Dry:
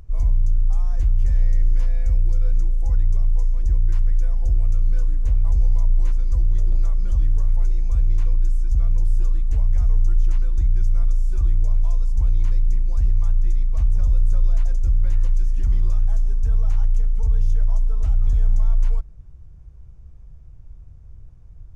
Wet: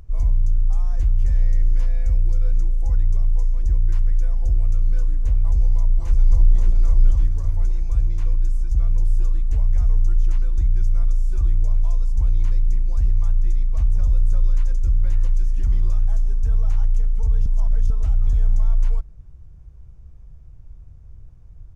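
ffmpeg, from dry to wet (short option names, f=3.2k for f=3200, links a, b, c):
-filter_complex "[0:a]asplit=2[a][b];[b]afade=t=in:st=5.43:d=0.01,afade=t=out:st=6.54:d=0.01,aecho=0:1:560|1120|1680|2240|2800|3360|3920|4480:0.749894|0.412442|0.226843|0.124764|0.06862|0.037741|0.0207576|0.0114167[c];[a][c]amix=inputs=2:normalize=0,asettb=1/sr,asplit=3[d][e][f];[d]atrim=end=14.424[g];[e]atrim=start=14.42:end=14.97,asetpts=PTS-STARTPTS,afade=t=in:d=0.004:c=qsin,afade=t=out:st=0.546:d=0.004:c=qsin,asuperstop=centerf=700:order=4:qfactor=2.5[h];[f]atrim=start=14.966[i];[g][h]acrossfade=d=0.004:c1=hsin:c2=qsin[j];[j][i]acrossfade=d=0.004:c1=qsin:c2=hsin,asplit=3[k][l][m];[k]atrim=end=17.462[n];[l]atrim=start=17.458:end=17.902,asetpts=PTS-STARTPTS,areverse[o];[m]atrim=start=17.898[p];[n][o]acrossfade=d=0.004:c1=hsin:c2=hsin[q];[q][p]acrossfade=d=0.004:c1=hsin:c2=hsin"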